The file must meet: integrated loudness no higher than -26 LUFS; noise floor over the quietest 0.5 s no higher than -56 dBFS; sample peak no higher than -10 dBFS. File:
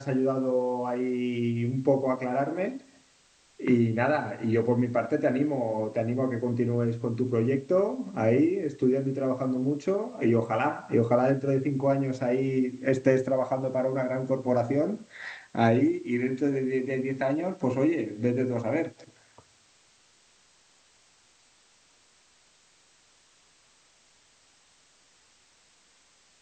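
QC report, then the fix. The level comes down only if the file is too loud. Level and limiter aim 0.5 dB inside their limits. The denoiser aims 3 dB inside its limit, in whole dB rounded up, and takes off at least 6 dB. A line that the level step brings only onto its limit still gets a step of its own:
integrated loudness -27.0 LUFS: pass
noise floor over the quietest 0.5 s -62 dBFS: pass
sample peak -8.0 dBFS: fail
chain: peak limiter -10.5 dBFS

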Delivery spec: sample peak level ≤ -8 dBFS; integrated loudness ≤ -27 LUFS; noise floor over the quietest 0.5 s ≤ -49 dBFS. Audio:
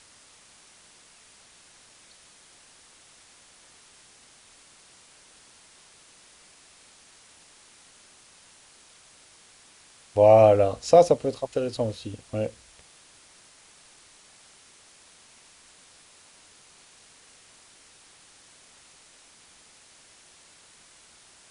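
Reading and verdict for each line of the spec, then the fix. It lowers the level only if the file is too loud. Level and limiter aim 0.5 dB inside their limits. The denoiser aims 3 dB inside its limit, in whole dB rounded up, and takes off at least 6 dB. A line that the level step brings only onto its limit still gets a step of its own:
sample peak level -5.0 dBFS: fail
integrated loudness -21.5 LUFS: fail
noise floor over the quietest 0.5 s -55 dBFS: pass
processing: trim -6 dB

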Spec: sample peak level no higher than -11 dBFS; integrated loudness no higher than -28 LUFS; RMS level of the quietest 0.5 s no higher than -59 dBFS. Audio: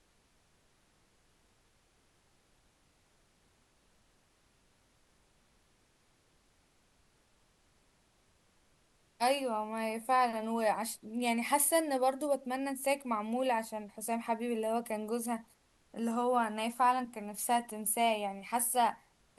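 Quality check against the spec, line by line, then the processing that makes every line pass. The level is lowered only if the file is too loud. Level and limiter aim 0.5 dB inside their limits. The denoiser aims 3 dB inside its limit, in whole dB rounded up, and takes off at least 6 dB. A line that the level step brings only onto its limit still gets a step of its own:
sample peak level -16.5 dBFS: pass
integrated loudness -33.0 LUFS: pass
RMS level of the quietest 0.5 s -70 dBFS: pass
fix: none needed

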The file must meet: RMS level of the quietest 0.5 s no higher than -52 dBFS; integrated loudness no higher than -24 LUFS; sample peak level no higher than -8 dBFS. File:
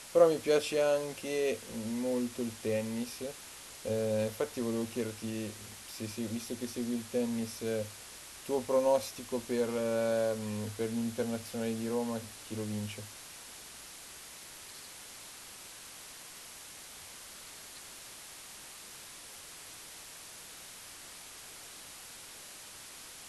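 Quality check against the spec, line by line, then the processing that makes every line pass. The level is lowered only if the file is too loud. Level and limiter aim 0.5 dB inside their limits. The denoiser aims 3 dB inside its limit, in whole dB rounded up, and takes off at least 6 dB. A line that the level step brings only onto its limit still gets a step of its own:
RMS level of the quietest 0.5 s -49 dBFS: fail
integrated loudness -34.0 LUFS: pass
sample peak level -11.0 dBFS: pass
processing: noise reduction 6 dB, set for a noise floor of -49 dBFS

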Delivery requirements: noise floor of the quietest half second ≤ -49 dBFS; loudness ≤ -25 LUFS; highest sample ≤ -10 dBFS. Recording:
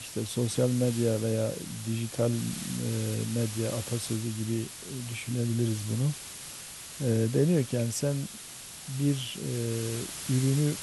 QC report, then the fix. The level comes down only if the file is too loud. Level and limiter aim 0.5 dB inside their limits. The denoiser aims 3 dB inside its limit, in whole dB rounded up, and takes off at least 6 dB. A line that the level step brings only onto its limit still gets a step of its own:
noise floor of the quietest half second -44 dBFS: fail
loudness -30.0 LUFS: pass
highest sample -12.5 dBFS: pass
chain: noise reduction 8 dB, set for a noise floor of -44 dBFS

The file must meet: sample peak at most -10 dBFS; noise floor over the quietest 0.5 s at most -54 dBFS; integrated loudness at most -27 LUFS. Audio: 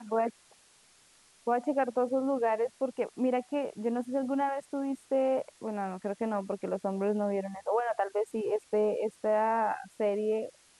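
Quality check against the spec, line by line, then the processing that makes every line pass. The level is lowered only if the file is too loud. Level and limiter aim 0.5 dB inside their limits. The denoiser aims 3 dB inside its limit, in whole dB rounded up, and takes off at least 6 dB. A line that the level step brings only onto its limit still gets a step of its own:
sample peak -16.5 dBFS: pass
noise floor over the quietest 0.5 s -62 dBFS: pass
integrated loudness -31.5 LUFS: pass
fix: none needed

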